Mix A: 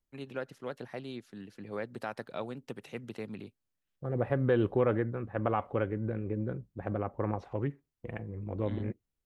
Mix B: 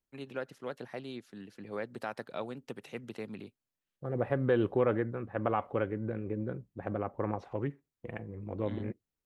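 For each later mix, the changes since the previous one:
master: add low-shelf EQ 81 Hz −10 dB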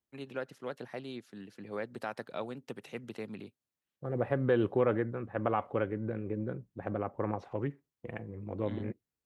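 master: add high-pass filter 61 Hz

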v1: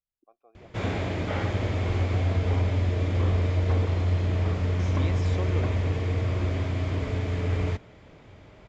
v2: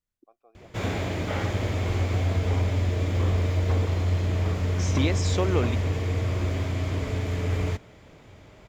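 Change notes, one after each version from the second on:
second voice +9.5 dB
master: remove high-frequency loss of the air 87 metres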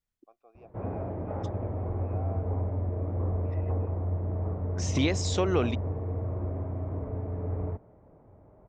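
background: add transistor ladder low-pass 1,100 Hz, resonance 25%

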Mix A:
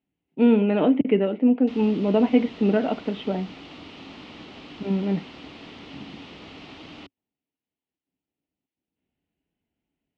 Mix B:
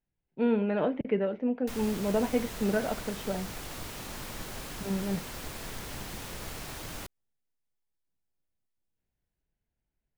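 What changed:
speech −7.5 dB
master: remove loudspeaker in its box 110–4,000 Hz, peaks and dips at 120 Hz −8 dB, 280 Hz +9 dB, 550 Hz −4 dB, 1,000 Hz −3 dB, 1,600 Hz −9 dB, 2,900 Hz +5 dB

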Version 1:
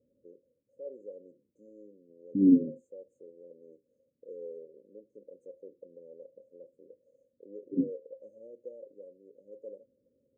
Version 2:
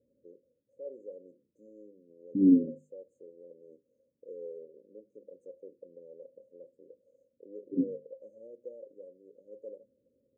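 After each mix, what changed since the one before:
master: add mains-hum notches 50/100/150/200/250 Hz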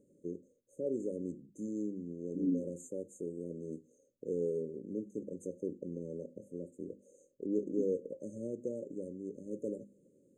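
first voice: remove formant filter e
second voice −11.5 dB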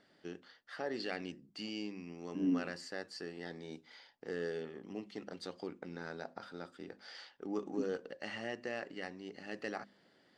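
first voice −5.0 dB
master: remove linear-phase brick-wall band-stop 590–6,200 Hz

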